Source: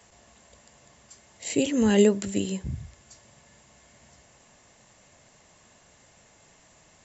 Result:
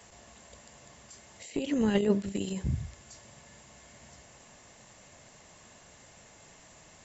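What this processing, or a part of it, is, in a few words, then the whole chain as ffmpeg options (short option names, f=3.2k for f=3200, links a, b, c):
de-esser from a sidechain: -filter_complex "[0:a]asplit=2[a][b];[b]highpass=f=5.6k:w=0.5412,highpass=f=5.6k:w=1.3066,apad=whole_len=310884[c];[a][c]sidechaincompress=threshold=-48dB:ratio=16:attack=1.4:release=22,asettb=1/sr,asplit=3[d][e][f];[d]atrim=end=1.504[g];[e]atrim=start=1.5:end=2.35,asetpts=PTS-STARTPTS,afade=t=in:d=0.004:c=qsin,afade=t=out:st=0.846:d=0.004:c=qsin,lowpass=5.6k[h];[f]atrim=start=2.346[i];[g][h]acrossfade=d=0.004:c1=hsin:c2=qsin[j];[j][i]acrossfade=d=0.004:c1=qsin:c2=hsin,volume=2.5dB"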